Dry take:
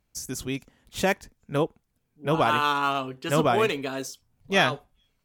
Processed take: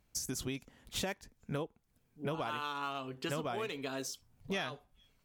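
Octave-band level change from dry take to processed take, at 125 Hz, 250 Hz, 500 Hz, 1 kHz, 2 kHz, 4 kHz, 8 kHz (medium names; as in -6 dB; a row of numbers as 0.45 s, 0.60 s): -11.5 dB, -11.5 dB, -14.0 dB, -15.0 dB, -14.5 dB, -10.5 dB, -5.0 dB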